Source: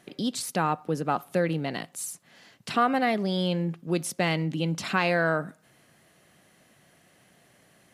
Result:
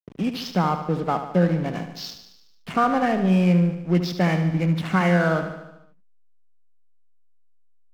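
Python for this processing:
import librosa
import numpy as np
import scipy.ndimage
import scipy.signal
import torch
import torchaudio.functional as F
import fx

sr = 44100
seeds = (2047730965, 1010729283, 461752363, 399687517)

p1 = fx.freq_compress(x, sr, knee_hz=1400.0, ratio=1.5)
p2 = fx.peak_eq(p1, sr, hz=180.0, db=9.5, octaves=0.2)
p3 = fx.backlash(p2, sr, play_db=-32.0)
p4 = p3 + fx.echo_feedback(p3, sr, ms=74, feedback_pct=60, wet_db=-9.5, dry=0)
y = F.gain(torch.from_numpy(p4), 3.0).numpy()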